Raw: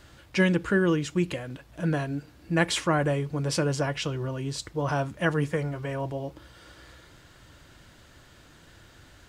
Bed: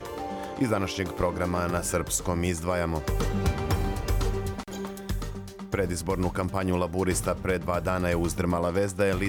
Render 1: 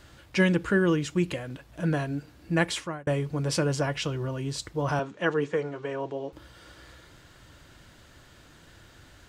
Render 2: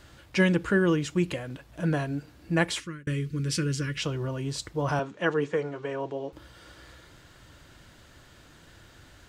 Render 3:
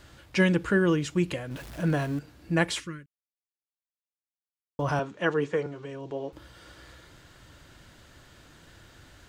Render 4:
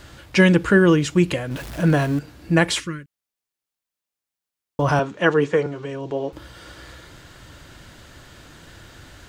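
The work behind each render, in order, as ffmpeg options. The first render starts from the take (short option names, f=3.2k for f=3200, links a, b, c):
-filter_complex "[0:a]asettb=1/sr,asplit=3[a][b][c];[a]atrim=end=4.994[d];[b]atrim=start=4.99:end=6.33,asetpts=PTS-STARTPTS,afade=t=in:d=0.004:c=qsin,afade=t=out:st=1.336:d=0.004:c=qsin,highpass=240,equalizer=f=430:t=q:w=4:g=6,equalizer=f=620:t=q:w=4:g=-4,equalizer=f=2.1k:t=q:w=4:g=-3,equalizer=f=5k:t=q:w=4:g=-6,lowpass=f=6.6k:w=0.5412,lowpass=f=6.6k:w=1.3066[e];[c]atrim=start=6.326[f];[d][e]acrossfade=d=0.004:c1=hsin:c2=qsin[g];[g][f]acrossfade=d=0.004:c1=qsin:c2=hsin,asplit=2[h][i];[h]atrim=end=3.07,asetpts=PTS-STARTPTS,afade=t=out:st=2.55:d=0.52[j];[i]atrim=start=3.07,asetpts=PTS-STARTPTS,afade=t=in:d=0.004:c=hsin[k];[j][k]concat=n=2:v=0:a=1"
-filter_complex "[0:a]asettb=1/sr,asplit=3[a][b][c];[a]atrim=end=2.804[d];[b]atrim=start=2.8:end=3.98,asetpts=PTS-STARTPTS,afade=t=in:d=0.004:c=qsin,afade=t=out:st=1.176:d=0.004:c=qsin,asuperstop=centerf=750:order=4:qfactor=0.66[e];[c]atrim=start=3.976[f];[d][e]acrossfade=d=0.004:c1=hsin:c2=qsin[g];[g][f]acrossfade=d=0.004:c1=qsin:c2=hsin"
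-filter_complex "[0:a]asettb=1/sr,asplit=3[a][b][c];[a]atrim=end=1.514[d];[b]atrim=start=1.51:end=2.19,asetpts=PTS-STARTPTS,afade=t=in:d=0.004:c=qsin,afade=t=out:st=0.676:d=0.004:c=qsin,aeval=exprs='val(0)+0.5*0.0106*sgn(val(0))':c=same[e];[c]atrim=start=2.186[f];[d][e]acrossfade=d=0.004:c1=hsin:c2=qsin[g];[g][f]acrossfade=d=0.004:c1=qsin:c2=hsin,asettb=1/sr,asplit=3[h][i][j];[h]atrim=end=5.664[k];[i]atrim=start=5.66:end=6.11,asetpts=PTS-STARTPTS,afade=t=in:d=0.004:c=qsin,afade=t=out:st=0.446:d=0.004:c=qsin,acrossover=split=320|3000[l][m][n];[m]acompressor=threshold=-43dB:ratio=6:attack=3.2:release=140:knee=2.83:detection=peak[o];[l][o][n]amix=inputs=3:normalize=0[p];[j]atrim=start=6.106[q];[k][p]acrossfade=d=0.004:c1=hsin:c2=qsin[r];[r][q]acrossfade=d=0.004:c1=qsin:c2=hsin,asplit=3[s][t][u];[s]atrim=end=3.06,asetpts=PTS-STARTPTS,afade=t=out:st=3.056:d=0.004:c=hsin[v];[t]atrim=start=3.06:end=4.79,asetpts=PTS-STARTPTS,volume=0[w];[u]atrim=start=4.79,asetpts=PTS-STARTPTS,afade=t=in:d=0.004:c=hsin[x];[v][w][x]concat=n=3:v=0:a=1"
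-af "volume=8.5dB,alimiter=limit=-3dB:level=0:latency=1"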